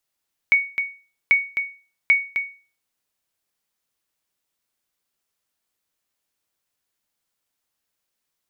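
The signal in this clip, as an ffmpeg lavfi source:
ffmpeg -f lavfi -i "aevalsrc='0.398*(sin(2*PI*2230*mod(t,0.79))*exp(-6.91*mod(t,0.79)/0.36)+0.398*sin(2*PI*2230*max(mod(t,0.79)-0.26,0))*exp(-6.91*max(mod(t,0.79)-0.26,0)/0.36))':duration=2.37:sample_rate=44100" out.wav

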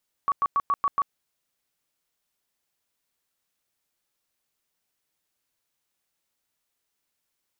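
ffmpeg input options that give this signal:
ffmpeg -f lavfi -i "aevalsrc='0.112*sin(2*PI*1130*mod(t,0.14))*lt(mod(t,0.14),44/1130)':duration=0.84:sample_rate=44100" out.wav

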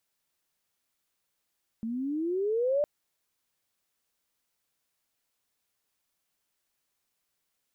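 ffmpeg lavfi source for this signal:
ffmpeg -f lavfi -i "aevalsrc='pow(10,(-22.5+8*(t/1.01-1))/20)*sin(2*PI*219*1.01/(17.5*log(2)/12)*(exp(17.5*log(2)/12*t/1.01)-1))':duration=1.01:sample_rate=44100" out.wav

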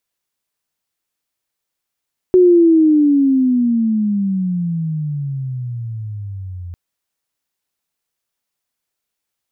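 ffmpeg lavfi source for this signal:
ffmpeg -f lavfi -i "aevalsrc='pow(10,(-5.5-21*t/4.4)/20)*sin(2*PI*370*4.4/log(86/370)*(exp(log(86/370)*t/4.4)-1))':duration=4.4:sample_rate=44100" out.wav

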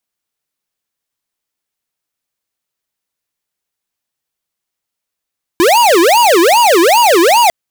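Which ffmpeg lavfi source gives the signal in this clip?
ffmpeg -f lavfi -i "aevalsrc='0.398*(2*lt(mod((648*t-317/(2*PI*2.5)*sin(2*PI*2.5*t)),1),0.5)-1)':duration=1.9:sample_rate=44100" out.wav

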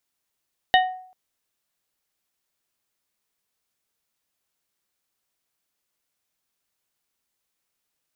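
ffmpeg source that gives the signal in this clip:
ffmpeg -f lavfi -i "aevalsrc='0.251*pow(10,-3*t/0.57)*sin(2*PI*742*t)+0.178*pow(10,-3*t/0.3)*sin(2*PI*1855*t)+0.126*pow(10,-3*t/0.216)*sin(2*PI*2968*t)+0.0891*pow(10,-3*t/0.185)*sin(2*PI*3710*t)':duration=0.39:sample_rate=44100" out.wav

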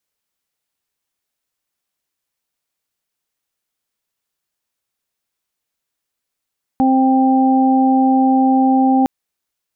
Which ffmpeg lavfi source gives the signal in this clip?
ffmpeg -f lavfi -i "aevalsrc='0.266*sin(2*PI*263*t)+0.0531*sin(2*PI*526*t)+0.178*sin(2*PI*789*t)':duration=2.26:sample_rate=44100" out.wav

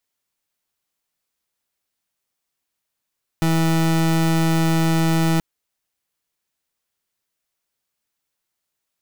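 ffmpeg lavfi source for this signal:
ffmpeg -f lavfi -i "aevalsrc='0.133*(2*lt(mod(163*t,1),0.3)-1)':duration=1.98:sample_rate=44100" out.wav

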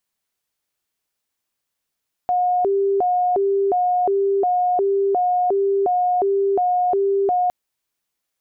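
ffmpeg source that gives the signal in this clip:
ffmpeg -f lavfi -i "aevalsrc='0.168*sin(2*PI*(558*t+163/1.4*(0.5-abs(mod(1.4*t,1)-0.5))))':duration=5.21:sample_rate=44100" out.wav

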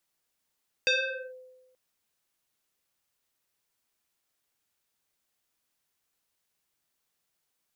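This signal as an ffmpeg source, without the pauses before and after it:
ffmpeg -f lavfi -i "aevalsrc='0.106*pow(10,-3*t/1.18)*sin(2*PI*511*t+3.9*clip(1-t/0.46,0,1)*sin(2*PI*2.04*511*t))':duration=0.88:sample_rate=44100" out.wav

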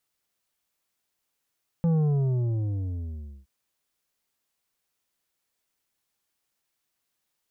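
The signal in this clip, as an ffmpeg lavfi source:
ffmpeg -f lavfi -i "aevalsrc='0.0944*clip((1.62-t)/1.54,0,1)*tanh(2.51*sin(2*PI*170*1.62/log(65/170)*(exp(log(65/170)*t/1.62)-1)))/tanh(2.51)':duration=1.62:sample_rate=44100" out.wav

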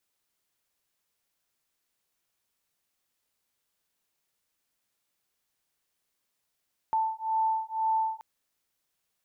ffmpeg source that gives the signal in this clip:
ffmpeg -f lavfi -i "aevalsrc='0.0376*(sin(2*PI*884*t)+sin(2*PI*886*t))':duration=1.28:sample_rate=44100" out.wav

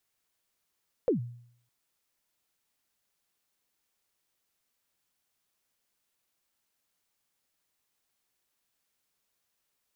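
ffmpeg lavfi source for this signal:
ffmpeg -f lavfi -i "aevalsrc='0.106*pow(10,-3*t/0.63)*sin(2*PI*(550*0.117/log(120/550)*(exp(log(120/550)*min(t,0.117)/0.117)-1)+120*max(t-0.117,0)))':duration=0.61:sample_rate=44100" out.wav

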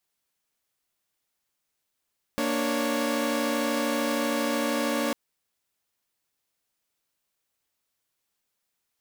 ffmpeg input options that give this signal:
ffmpeg -f lavfi -i "aevalsrc='0.0473*((2*mod(233.08*t,1)-1)+(2*mod(293.66*t,1)-1)+(2*mod(554.37*t,1)-1))':duration=2.75:sample_rate=44100" out.wav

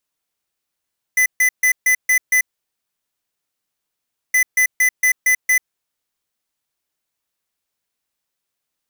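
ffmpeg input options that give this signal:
ffmpeg -f lavfi -i "aevalsrc='0.2*(2*lt(mod(2010*t,1),0.5)-1)*clip(min(mod(mod(t,3.17),0.23),0.09-mod(mod(t,3.17),0.23))/0.005,0,1)*lt(mod(t,3.17),1.38)':duration=6.34:sample_rate=44100" out.wav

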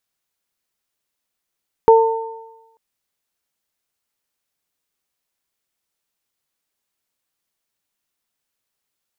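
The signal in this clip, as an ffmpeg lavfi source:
ffmpeg -f lavfi -i "aevalsrc='0.531*pow(10,-3*t/0.97)*sin(2*PI*451*t)+0.355*pow(10,-3*t/1.09)*sin(2*PI*902*t)':duration=0.89:sample_rate=44100" out.wav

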